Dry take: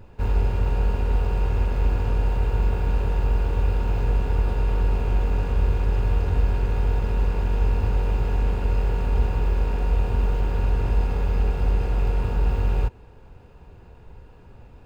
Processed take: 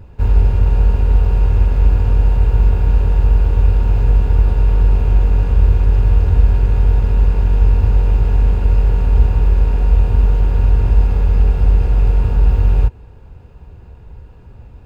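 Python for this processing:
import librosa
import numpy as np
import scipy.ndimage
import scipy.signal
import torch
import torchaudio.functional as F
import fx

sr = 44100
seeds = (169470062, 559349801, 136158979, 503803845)

y = fx.peak_eq(x, sr, hz=65.0, db=8.5, octaves=2.7)
y = y * 10.0 ** (2.0 / 20.0)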